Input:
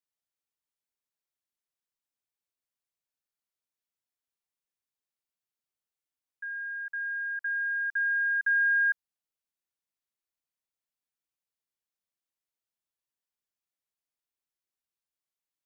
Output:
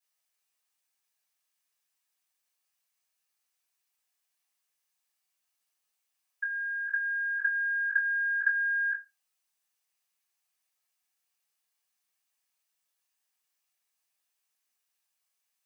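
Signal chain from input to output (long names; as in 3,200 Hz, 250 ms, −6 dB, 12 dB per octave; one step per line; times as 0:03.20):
high-pass filter 1,500 Hz 6 dB per octave
downward compressor, threshold −33 dBFS, peak gain reduction 7 dB
convolution reverb RT60 0.25 s, pre-delay 3 ms, DRR −9.5 dB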